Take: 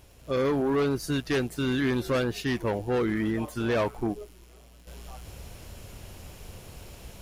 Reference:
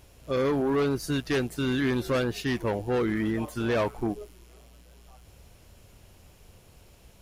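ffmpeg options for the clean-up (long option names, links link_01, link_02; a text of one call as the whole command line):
ffmpeg -i in.wav -af "adeclick=threshold=4,asetnsamples=nb_out_samples=441:pad=0,asendcmd='4.87 volume volume -9.5dB',volume=0dB" out.wav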